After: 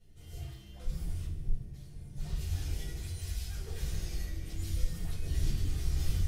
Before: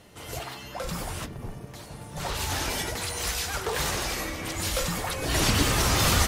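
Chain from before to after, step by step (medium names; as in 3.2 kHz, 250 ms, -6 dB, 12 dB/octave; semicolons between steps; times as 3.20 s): amplifier tone stack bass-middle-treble 10-0-1; compression 6:1, threshold -37 dBFS, peak gain reduction 10.5 dB; on a send: thinning echo 74 ms, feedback 73%, level -12 dB; on the sum: simulated room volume 210 m³, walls furnished, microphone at 4.7 m; trim -3.5 dB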